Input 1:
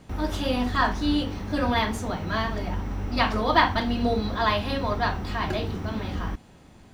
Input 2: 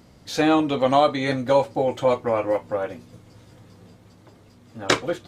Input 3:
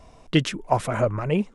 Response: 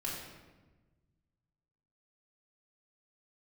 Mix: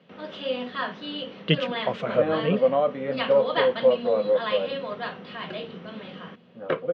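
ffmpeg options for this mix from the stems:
-filter_complex "[0:a]highpass=frequency=200:poles=1,volume=-5.5dB,asplit=2[link_01][link_02];[1:a]lowpass=1300,adelay=1800,volume=-5.5dB[link_03];[2:a]adelay=1150,volume=-2.5dB[link_04];[link_02]apad=whole_len=119056[link_05];[link_04][link_05]sidechaincompress=threshold=-34dB:ratio=8:attack=43:release=139[link_06];[link_01][link_03][link_06]amix=inputs=3:normalize=0,highpass=frequency=160:width=0.5412,highpass=frequency=160:width=1.3066,equalizer=frequency=170:width_type=q:width=4:gain=7,equalizer=frequency=310:width_type=q:width=4:gain=-8,equalizer=frequency=510:width_type=q:width=4:gain=9,equalizer=frequency=850:width_type=q:width=4:gain=-8,equalizer=frequency=3000:width_type=q:width=4:gain=7,lowpass=frequency=3900:width=0.5412,lowpass=frequency=3900:width=1.3066"

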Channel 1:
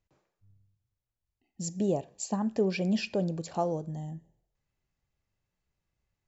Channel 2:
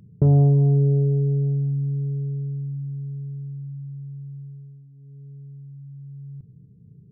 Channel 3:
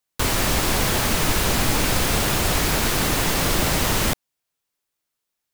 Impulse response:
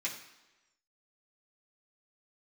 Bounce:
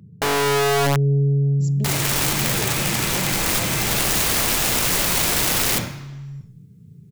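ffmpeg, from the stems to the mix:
-filter_complex "[0:a]agate=range=-33dB:threshold=-56dB:ratio=3:detection=peak,volume=-3dB,asplit=2[link_01][link_02];[1:a]highpass=frequency=89:width=0.5412,highpass=frequency=89:width=1.3066,equalizer=frequency=120:width_type=o:width=0.51:gain=-5,volume=1dB,asplit=2[link_03][link_04];[link_04]volume=-23.5dB[link_05];[2:a]adelay=1650,volume=1.5dB,asplit=2[link_06][link_07];[link_07]volume=-3.5dB[link_08];[link_02]apad=whole_len=316911[link_09];[link_06][link_09]sidechaincompress=threshold=-35dB:ratio=8:attack=16:release=508[link_10];[3:a]atrim=start_sample=2205[link_11];[link_05][link_08]amix=inputs=2:normalize=0[link_12];[link_12][link_11]afir=irnorm=-1:irlink=0[link_13];[link_01][link_03][link_10][link_13]amix=inputs=4:normalize=0,lowshelf=frequency=220:gain=8.5,aeval=exprs='(mod(3.55*val(0)+1,2)-1)/3.55':channel_layout=same,alimiter=limit=-14.5dB:level=0:latency=1:release=14"

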